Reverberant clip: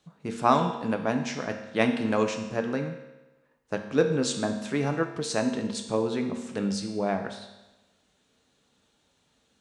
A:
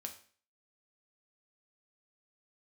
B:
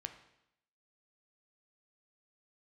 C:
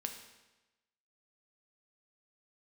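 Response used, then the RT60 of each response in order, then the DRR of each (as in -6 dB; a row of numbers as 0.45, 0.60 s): C; 0.45, 0.80, 1.1 s; 3.5, 6.5, 4.0 dB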